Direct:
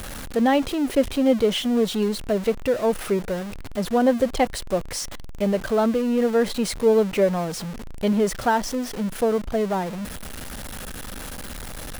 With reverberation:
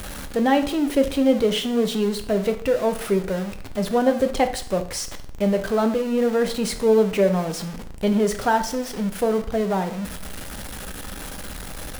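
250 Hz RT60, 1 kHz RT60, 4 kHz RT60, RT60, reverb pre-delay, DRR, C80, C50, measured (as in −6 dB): 0.55 s, 0.50 s, 0.50 s, 0.50 s, 4 ms, 7.0 dB, 15.5 dB, 12.0 dB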